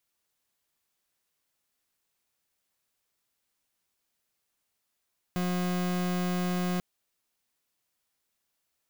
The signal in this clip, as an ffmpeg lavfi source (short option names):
-f lavfi -i "aevalsrc='0.0355*(2*lt(mod(180*t,1),0.39)-1)':d=1.44:s=44100"